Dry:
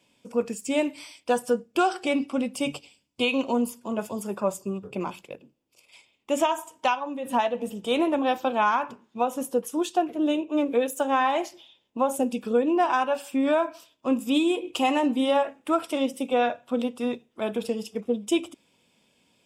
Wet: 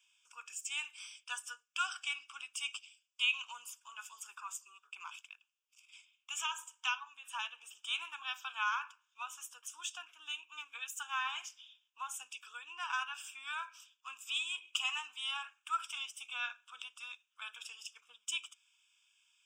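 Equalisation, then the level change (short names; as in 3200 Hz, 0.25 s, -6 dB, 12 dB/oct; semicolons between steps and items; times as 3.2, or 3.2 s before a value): HPF 1400 Hz 24 dB/oct; fixed phaser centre 2900 Hz, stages 8; -2.0 dB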